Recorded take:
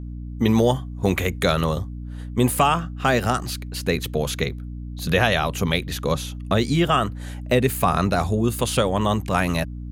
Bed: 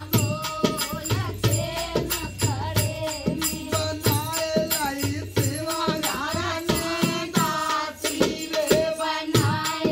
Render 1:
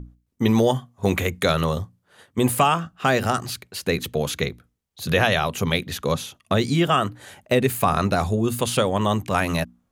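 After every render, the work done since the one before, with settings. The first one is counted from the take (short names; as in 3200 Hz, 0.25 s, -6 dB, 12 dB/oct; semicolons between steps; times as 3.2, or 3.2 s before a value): notches 60/120/180/240/300 Hz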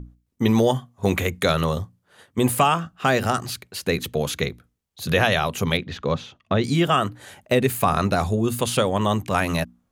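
5.77–6.64 air absorption 170 m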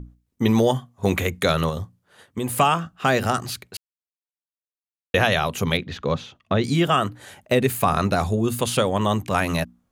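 1.69–2.57 compressor 2.5:1, threshold -24 dBFS; 3.77–5.14 mute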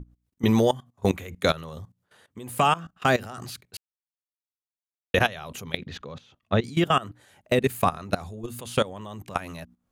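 level quantiser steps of 19 dB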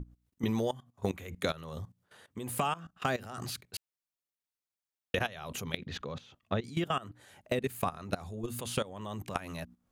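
compressor 2.5:1, threshold -33 dBFS, peak gain reduction 11.5 dB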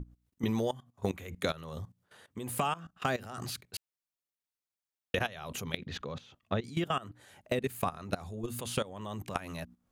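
nothing audible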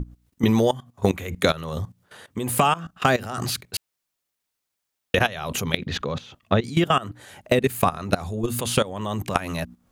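gain +12 dB; limiter -3 dBFS, peak gain reduction 2 dB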